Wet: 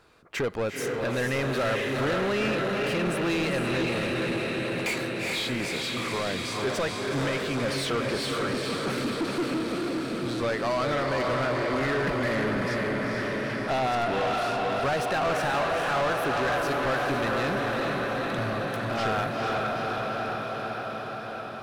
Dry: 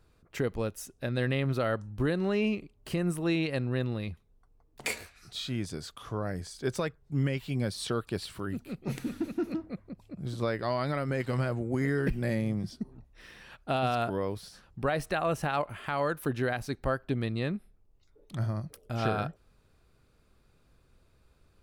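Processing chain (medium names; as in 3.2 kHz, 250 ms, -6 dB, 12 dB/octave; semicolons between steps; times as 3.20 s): on a send: echo that smears into a reverb 453 ms, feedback 72%, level -4 dB; on the sum: overdrive pedal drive 25 dB, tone 3.3 kHz, clips at -14 dBFS; trim -4.5 dB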